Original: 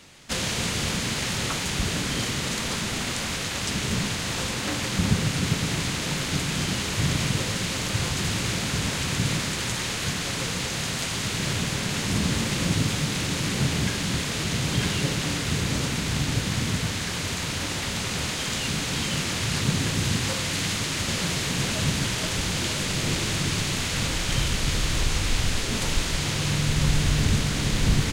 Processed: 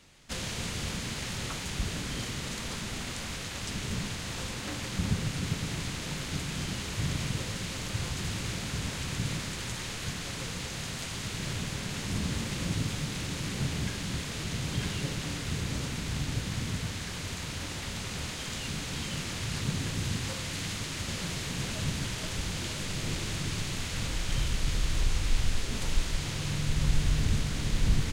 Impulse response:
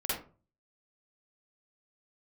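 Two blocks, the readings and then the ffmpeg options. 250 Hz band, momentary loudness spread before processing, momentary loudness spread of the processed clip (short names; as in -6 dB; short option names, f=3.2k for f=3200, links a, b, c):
-8.0 dB, 3 LU, 4 LU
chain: -af "lowshelf=f=65:g=10.5,volume=-9dB"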